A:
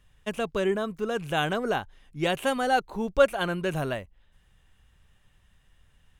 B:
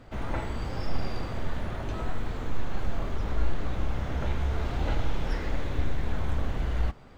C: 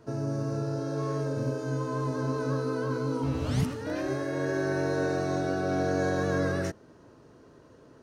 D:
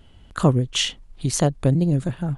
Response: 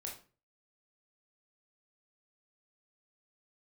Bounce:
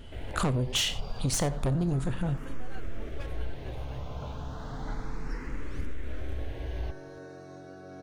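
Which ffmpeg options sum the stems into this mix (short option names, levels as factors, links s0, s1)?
-filter_complex "[0:a]aeval=exprs='0.2*(abs(mod(val(0)/0.2+3,4)-2)-1)':c=same,asplit=2[s0][s1];[s1]adelay=10.6,afreqshift=-1.4[s2];[s0][s2]amix=inputs=2:normalize=1,volume=0.119[s3];[1:a]asplit=2[s4][s5];[s5]afreqshift=0.32[s6];[s4][s6]amix=inputs=2:normalize=1,volume=0.596[s7];[2:a]adelay=2200,volume=0.133[s8];[3:a]asubboost=boost=6.5:cutoff=68,asoftclip=type=tanh:threshold=0.0891,volume=1.26,asplit=3[s9][s10][s11];[s10]volume=0.422[s12];[s11]volume=0.126[s13];[4:a]atrim=start_sample=2205[s14];[s12][s14]afir=irnorm=-1:irlink=0[s15];[s13]aecho=0:1:90:1[s16];[s3][s7][s8][s9][s15][s16]amix=inputs=6:normalize=0,acompressor=threshold=0.0562:ratio=6"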